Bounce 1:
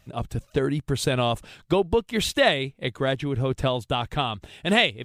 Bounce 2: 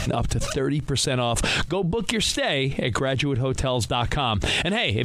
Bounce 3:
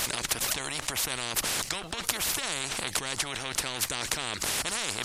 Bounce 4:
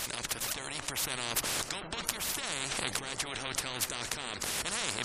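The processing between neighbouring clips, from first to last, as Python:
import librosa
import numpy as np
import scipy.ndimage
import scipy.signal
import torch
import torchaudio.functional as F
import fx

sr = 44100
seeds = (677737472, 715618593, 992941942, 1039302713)

y1 = scipy.signal.sosfilt(scipy.signal.cheby1(2, 1.0, 8500.0, 'lowpass', fs=sr, output='sos'), x)
y1 = fx.env_flatten(y1, sr, amount_pct=100)
y1 = y1 * librosa.db_to_amplitude(-6.0)
y2 = fx.spectral_comp(y1, sr, ratio=10.0)
y3 = fx.recorder_agc(y2, sr, target_db=-11.0, rise_db_per_s=8.8, max_gain_db=30)
y3 = fx.echo_wet_lowpass(y3, sr, ms=125, feedback_pct=80, hz=1700.0, wet_db=-11)
y3 = fx.spec_gate(y3, sr, threshold_db=-20, keep='strong')
y3 = y3 * librosa.db_to_amplitude(-7.0)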